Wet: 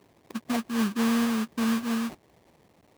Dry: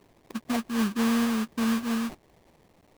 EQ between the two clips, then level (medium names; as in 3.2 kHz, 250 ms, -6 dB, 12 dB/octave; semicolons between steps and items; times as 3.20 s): high-pass 64 Hz; 0.0 dB